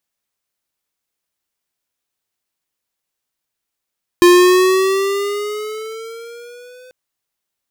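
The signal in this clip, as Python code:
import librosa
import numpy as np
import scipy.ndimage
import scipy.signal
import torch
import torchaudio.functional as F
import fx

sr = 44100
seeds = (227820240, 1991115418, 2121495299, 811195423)

y = fx.riser_tone(sr, length_s=2.69, level_db=-6.5, wave='square', hz=350.0, rise_st=6.5, swell_db=-34.5)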